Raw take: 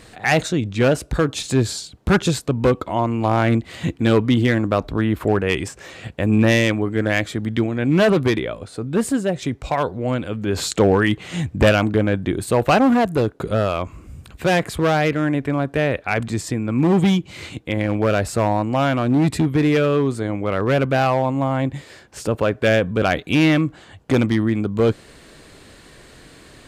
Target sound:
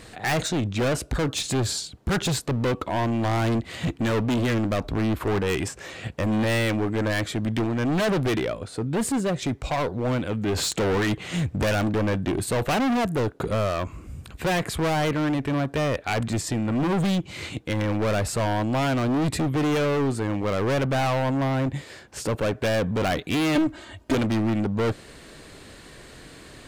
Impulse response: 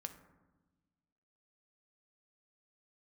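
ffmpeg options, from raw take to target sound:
-filter_complex "[0:a]asoftclip=type=hard:threshold=-21dB,asettb=1/sr,asplit=3[a][b][c];[a]atrim=end=23.554[d];[b]atrim=start=23.55:end=24.15,asetpts=PTS-STARTPTS,afade=t=in:d=0.004:c=qsin,afade=t=out:st=0.596:d=0.004:c=qsin,aecho=1:1:3.2:0.91,atrim=end_sample=26460[e];[c]atrim=start=24.146[f];[d][e]acrossfade=d=0.004:c1=hsin:c2=qsin[g];[g][f]acrossfade=d=0.004:c1=qsin:c2=hsin"

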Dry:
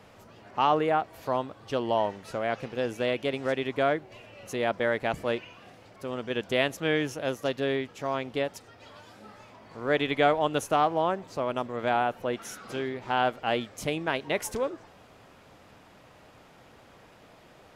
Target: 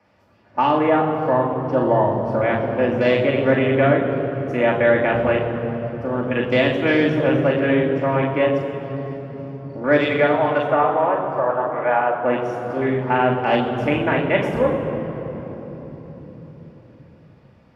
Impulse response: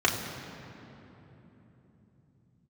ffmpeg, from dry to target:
-filter_complex "[0:a]afwtdn=0.0126,asettb=1/sr,asplit=3[a][b][c];[a]atrim=end=10.044[d];[b]atrim=start=10.04:end=12.24,asetpts=PTS-STARTPTS,afade=t=in:d=0.004:c=qsin,afade=t=out:st=2.196:d=0.004:c=qsin,acrossover=split=410 2400:gain=0.0891 1 0.2[e][f][g];[e][f][g]amix=inputs=3:normalize=0[h];[c]atrim=start=12.236[i];[d][h]acrossfade=d=0.004:c1=hsin:c2=qsin[j];[j][i]acrossfade=d=0.004:c1=qsin:c2=hsin,acrossover=split=480[k][l];[l]acompressor=threshold=-27dB:ratio=6[m];[k][m]amix=inputs=2:normalize=0[n];[1:a]atrim=start_sample=2205,asetrate=33957,aresample=44100[o];[n][o]afir=irnorm=-1:irlink=0,volume=-4.5dB"

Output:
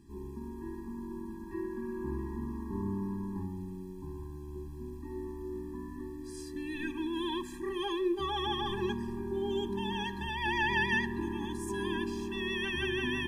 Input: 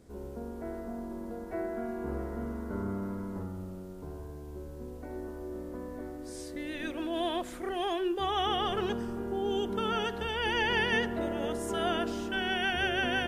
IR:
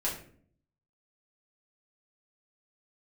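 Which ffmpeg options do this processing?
-filter_complex "[0:a]asplit=2[a][b];[1:a]atrim=start_sample=2205,asetrate=33957,aresample=44100[c];[b][c]afir=irnorm=-1:irlink=0,volume=-23.5dB[d];[a][d]amix=inputs=2:normalize=0,afftfilt=real='re*eq(mod(floor(b*sr/1024/390),2),0)':imag='im*eq(mod(floor(b*sr/1024/390),2),0)':win_size=1024:overlap=0.75"

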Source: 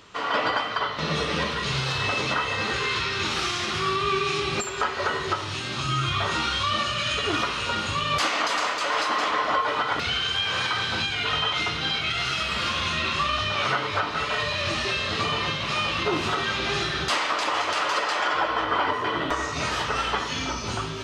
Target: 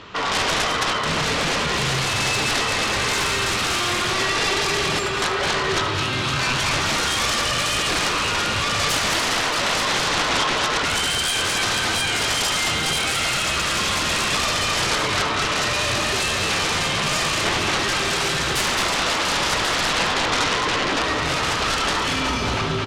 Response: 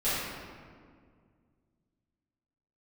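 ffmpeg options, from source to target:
-filter_complex "[0:a]lowpass=4.1k,atempo=0.92,aeval=exprs='0.224*(cos(1*acos(clip(val(0)/0.224,-1,1)))-cos(1*PI/2))+0.0562*(cos(3*acos(clip(val(0)/0.224,-1,1)))-cos(3*PI/2))+0.112*(cos(7*acos(clip(val(0)/0.224,-1,1)))-cos(7*PI/2))':c=same,asplit=2[a][b];[b]aecho=0:1:76|214:0.224|0.501[c];[a][c]amix=inputs=2:normalize=0"

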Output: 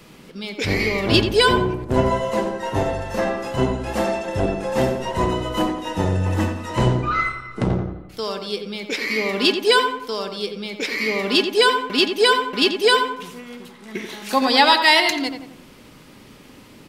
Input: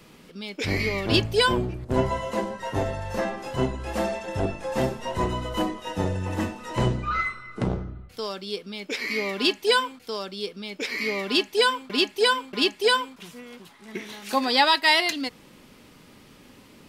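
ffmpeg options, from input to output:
-filter_complex "[0:a]asplit=2[a][b];[b]adelay=87,lowpass=f=2k:p=1,volume=-6dB,asplit=2[c][d];[d]adelay=87,lowpass=f=2k:p=1,volume=0.49,asplit=2[e][f];[f]adelay=87,lowpass=f=2k:p=1,volume=0.49,asplit=2[g][h];[h]adelay=87,lowpass=f=2k:p=1,volume=0.49,asplit=2[i][j];[j]adelay=87,lowpass=f=2k:p=1,volume=0.49,asplit=2[k][l];[l]adelay=87,lowpass=f=2k:p=1,volume=0.49[m];[a][c][e][g][i][k][m]amix=inputs=7:normalize=0,volume=4.5dB"

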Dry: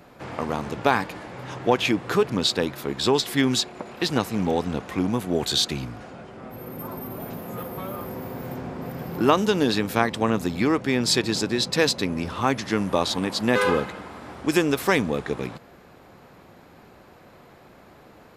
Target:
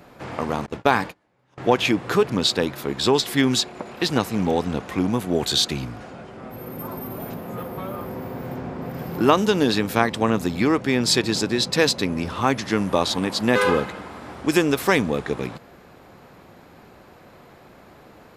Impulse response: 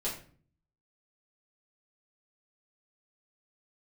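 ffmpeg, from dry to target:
-filter_complex "[0:a]asettb=1/sr,asplit=3[a][b][c];[a]atrim=end=0.664[d];[b]atrim=start=0.66:end=1.58,asetpts=PTS-STARTPTS,afade=t=in:d=0.004:c=qsin,afade=t=out:st=0.916:d=0.004:c=qsin,agate=range=-31dB:threshold=-30dB:ratio=16:detection=peak[e];[c]atrim=start=1.576[f];[d][e]acrossfade=d=0.004:c1=hsin:c2=qsin[g];[g][f]acrossfade=d=0.004:c1=qsin:c2=hsin,asettb=1/sr,asplit=3[h][i][j];[h]atrim=end=7.344[k];[i]atrim=start=7.34:end=8.94,asetpts=PTS-STARTPTS,afade=t=in:d=0.004:c=qsin,afade=t=out:st=1.596:d=0.004:c=qsin,highshelf=f=4.7k:g=-7[l];[j]atrim=start=8.936[m];[k][l]acrossfade=d=0.004:c1=hsin:c2=qsin[n];[n][m]acrossfade=d=0.004:c1=qsin:c2=hsin,volume=2dB"

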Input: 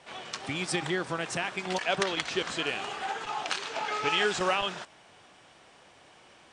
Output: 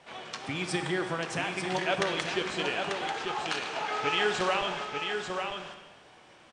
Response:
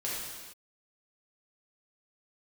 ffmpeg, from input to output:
-filter_complex "[0:a]highshelf=f=5.1k:g=-6,aecho=1:1:891:0.531,asplit=2[a][b];[1:a]atrim=start_sample=2205[c];[b][c]afir=irnorm=-1:irlink=0,volume=-9.5dB[d];[a][d]amix=inputs=2:normalize=0,volume=-2.5dB"

